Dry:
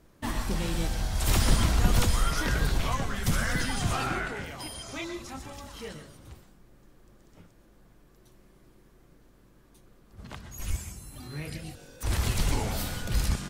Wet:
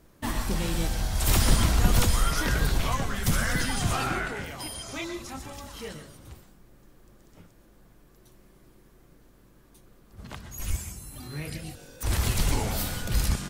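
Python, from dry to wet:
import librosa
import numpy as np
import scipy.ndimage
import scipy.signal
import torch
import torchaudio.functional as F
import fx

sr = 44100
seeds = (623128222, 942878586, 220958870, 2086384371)

y = fx.high_shelf(x, sr, hz=11000.0, db=6.5)
y = F.gain(torch.from_numpy(y), 1.5).numpy()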